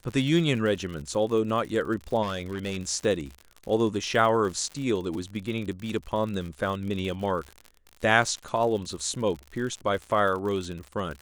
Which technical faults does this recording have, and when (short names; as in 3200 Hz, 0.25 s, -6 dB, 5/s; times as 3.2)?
crackle 68/s -33 dBFS
2.22–2.77 clipped -26 dBFS